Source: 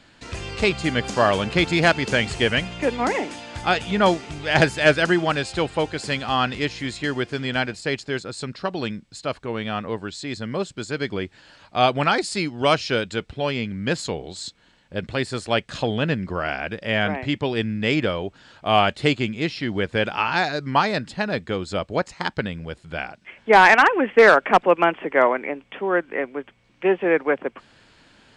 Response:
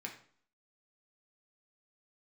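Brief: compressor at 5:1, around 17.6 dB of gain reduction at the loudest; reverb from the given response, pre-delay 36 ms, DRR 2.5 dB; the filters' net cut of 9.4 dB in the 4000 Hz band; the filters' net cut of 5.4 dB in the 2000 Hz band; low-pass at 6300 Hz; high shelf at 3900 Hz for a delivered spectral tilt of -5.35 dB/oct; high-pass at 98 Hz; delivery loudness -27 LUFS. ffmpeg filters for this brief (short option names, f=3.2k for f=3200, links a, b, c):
-filter_complex "[0:a]highpass=98,lowpass=6.3k,equalizer=f=2k:t=o:g=-4,highshelf=f=3.9k:g=-8.5,equalizer=f=4k:t=o:g=-6,acompressor=threshold=-30dB:ratio=5,asplit=2[a][b];[1:a]atrim=start_sample=2205,adelay=36[c];[b][c]afir=irnorm=-1:irlink=0,volume=-1.5dB[d];[a][d]amix=inputs=2:normalize=0,volume=5.5dB"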